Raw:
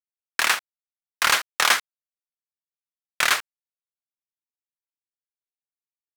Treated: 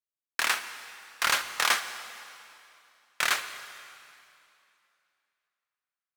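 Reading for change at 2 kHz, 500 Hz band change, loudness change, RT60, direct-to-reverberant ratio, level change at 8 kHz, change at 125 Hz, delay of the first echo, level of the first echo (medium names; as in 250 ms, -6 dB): -5.5 dB, -5.5 dB, -6.5 dB, 2.7 s, 9.5 dB, -5.5 dB, no reading, no echo, no echo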